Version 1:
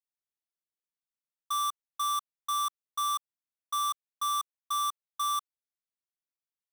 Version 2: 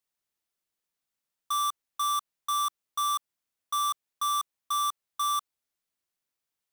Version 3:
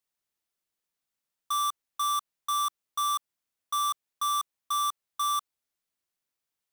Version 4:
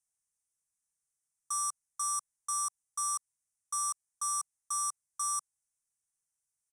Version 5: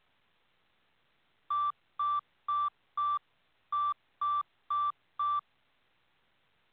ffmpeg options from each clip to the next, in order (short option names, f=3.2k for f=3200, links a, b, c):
-af "asoftclip=type=tanh:threshold=-34.5dB,volume=8dB"
-af anull
-af "firequalizer=gain_entry='entry(140,0);entry(360,-30);entry(780,-7);entry(2100,-8);entry(3600,-25);entry(5700,4);entry(9400,11);entry(15000,-19)':delay=0.05:min_phase=1,volume=-1.5dB"
-af "lowshelf=f=65:g=-7,volume=6.5dB" -ar 8000 -c:a pcm_alaw